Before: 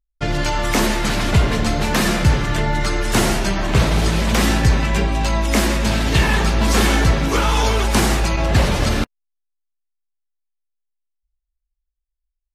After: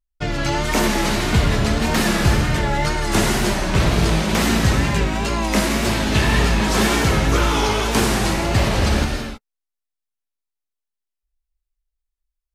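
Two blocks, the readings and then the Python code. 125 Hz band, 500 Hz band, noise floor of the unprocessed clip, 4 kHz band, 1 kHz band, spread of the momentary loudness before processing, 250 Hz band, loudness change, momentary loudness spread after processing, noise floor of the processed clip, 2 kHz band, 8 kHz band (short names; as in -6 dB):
-1.0 dB, 0.0 dB, -78 dBFS, 0.0 dB, 0.0 dB, 4 LU, +0.5 dB, -0.5 dB, 4 LU, -83 dBFS, 0.0 dB, -0.5 dB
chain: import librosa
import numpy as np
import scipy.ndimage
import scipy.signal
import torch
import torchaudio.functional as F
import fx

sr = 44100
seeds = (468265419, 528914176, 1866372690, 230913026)

y = fx.rev_gated(x, sr, seeds[0], gate_ms=350, shape='flat', drr_db=1.5)
y = fx.wow_flutter(y, sr, seeds[1], rate_hz=2.1, depth_cents=71.0)
y = y * librosa.db_to_amplitude(-2.5)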